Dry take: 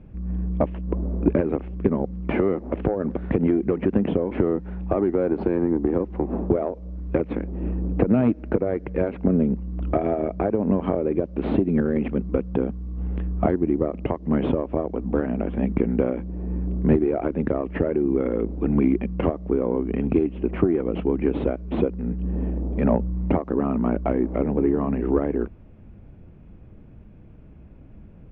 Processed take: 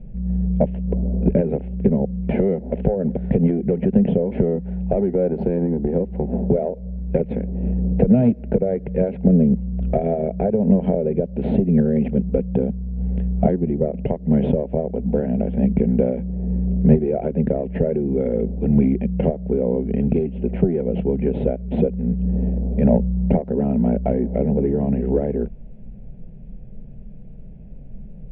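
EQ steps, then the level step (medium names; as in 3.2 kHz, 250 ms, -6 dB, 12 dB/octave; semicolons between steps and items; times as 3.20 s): tilt EQ -2.5 dB/octave; static phaser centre 310 Hz, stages 6; +2.0 dB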